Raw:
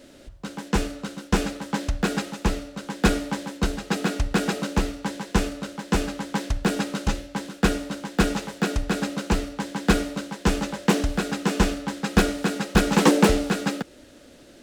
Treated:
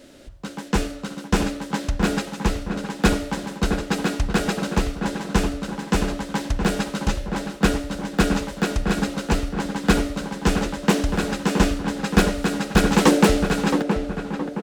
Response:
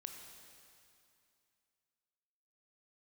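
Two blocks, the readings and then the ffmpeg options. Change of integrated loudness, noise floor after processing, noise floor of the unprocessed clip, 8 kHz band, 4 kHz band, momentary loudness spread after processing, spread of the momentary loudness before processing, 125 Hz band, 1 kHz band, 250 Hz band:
+2.0 dB, -38 dBFS, -49 dBFS, +1.5 dB, +1.5 dB, 8 LU, 10 LU, +2.5 dB, +2.5 dB, +2.5 dB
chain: -filter_complex "[0:a]asplit=2[a][b];[b]adelay=669,lowpass=f=1.8k:p=1,volume=-6.5dB,asplit=2[c][d];[d]adelay=669,lowpass=f=1.8k:p=1,volume=0.47,asplit=2[e][f];[f]adelay=669,lowpass=f=1.8k:p=1,volume=0.47,asplit=2[g][h];[h]adelay=669,lowpass=f=1.8k:p=1,volume=0.47,asplit=2[i][j];[j]adelay=669,lowpass=f=1.8k:p=1,volume=0.47,asplit=2[k][l];[l]adelay=669,lowpass=f=1.8k:p=1,volume=0.47[m];[a][c][e][g][i][k][m]amix=inputs=7:normalize=0,volume=1.5dB"

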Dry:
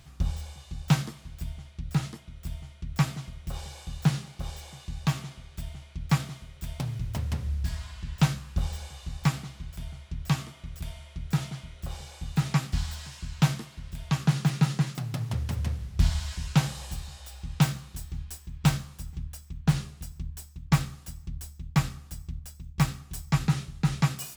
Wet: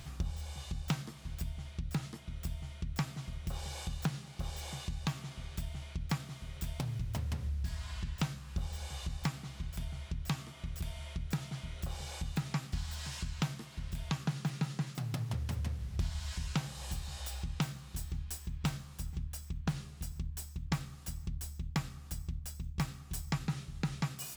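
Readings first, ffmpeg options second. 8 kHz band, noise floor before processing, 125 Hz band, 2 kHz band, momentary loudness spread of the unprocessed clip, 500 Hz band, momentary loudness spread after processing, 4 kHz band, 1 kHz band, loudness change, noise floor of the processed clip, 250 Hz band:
-5.5 dB, -51 dBFS, -9.0 dB, -7.5 dB, 14 LU, -6.0 dB, 6 LU, -6.0 dB, -8.5 dB, -9.0 dB, -50 dBFS, -9.0 dB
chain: -af "acompressor=threshold=-42dB:ratio=3,volume=5dB"

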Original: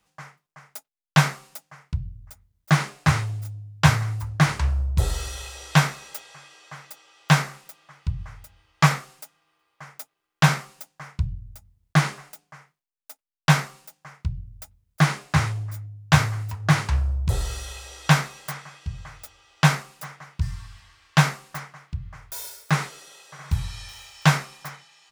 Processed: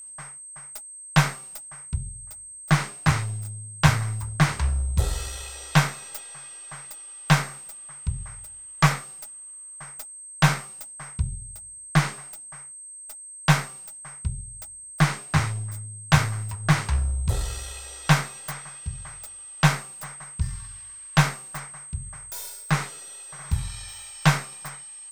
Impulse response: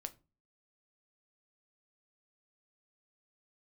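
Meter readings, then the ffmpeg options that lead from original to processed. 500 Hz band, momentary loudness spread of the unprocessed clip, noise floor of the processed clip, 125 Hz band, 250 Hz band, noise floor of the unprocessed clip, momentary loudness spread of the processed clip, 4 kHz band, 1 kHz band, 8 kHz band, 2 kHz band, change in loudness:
-1.0 dB, 20 LU, -42 dBFS, -1.5 dB, -1.5 dB, -81 dBFS, 16 LU, -1.5 dB, -1.5 dB, +4.0 dB, -1.5 dB, -2.0 dB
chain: -af "aeval=exprs='if(lt(val(0),0),0.708*val(0),val(0))':c=same,aeval=exprs='val(0)+0.0112*sin(2*PI*8300*n/s)':c=same"

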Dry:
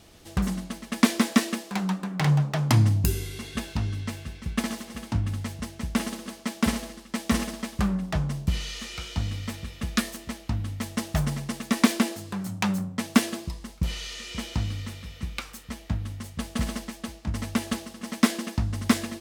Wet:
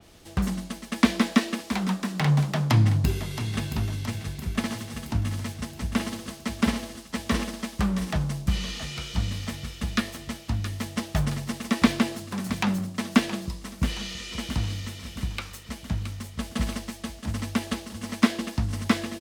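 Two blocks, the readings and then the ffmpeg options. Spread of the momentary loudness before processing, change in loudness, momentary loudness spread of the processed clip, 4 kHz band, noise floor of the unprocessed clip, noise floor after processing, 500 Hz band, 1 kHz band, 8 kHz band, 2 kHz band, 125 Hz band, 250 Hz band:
13 LU, 0.0 dB, 12 LU, +0.5 dB, -47 dBFS, -45 dBFS, +0.5 dB, +0.5 dB, -2.5 dB, +0.5 dB, +0.5 dB, +0.5 dB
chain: -filter_complex "[0:a]aecho=1:1:671|1342|2013|2684|3355|4026:0.251|0.141|0.0788|0.0441|0.0247|0.0138,acrossover=split=200|1300|3900[a][b][c][d];[d]acompressor=threshold=-50dB:ratio=4[e];[a][b][c][e]amix=inputs=4:normalize=0,adynamicequalizer=threshold=0.00398:dfrequency=3500:dqfactor=0.7:tfrequency=3500:tqfactor=0.7:attack=5:release=100:ratio=0.375:range=3.5:mode=boostabove:tftype=highshelf"

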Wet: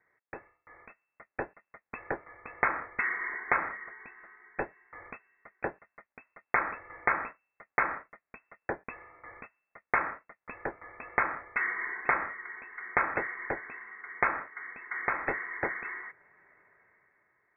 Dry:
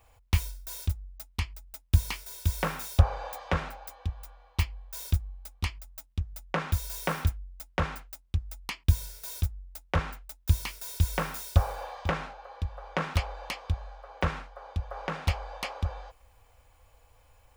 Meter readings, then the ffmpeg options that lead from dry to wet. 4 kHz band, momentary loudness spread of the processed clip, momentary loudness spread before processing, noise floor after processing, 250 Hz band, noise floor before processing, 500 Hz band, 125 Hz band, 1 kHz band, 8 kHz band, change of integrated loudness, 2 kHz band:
under -40 dB, 19 LU, 12 LU, under -85 dBFS, -6.0 dB, -62 dBFS, -0.5 dB, -25.0 dB, +3.0 dB, under -40 dB, -0.5 dB, +8.0 dB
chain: -af "highpass=800,equalizer=f=1.1k:w=4:g=-4,dynaudnorm=f=200:g=9:m=11.5dB,lowpass=f=2.3k:t=q:w=0.5098,lowpass=f=2.3k:t=q:w=0.6013,lowpass=f=2.3k:t=q:w=0.9,lowpass=f=2.3k:t=q:w=2.563,afreqshift=-2700,volume=-2.5dB"

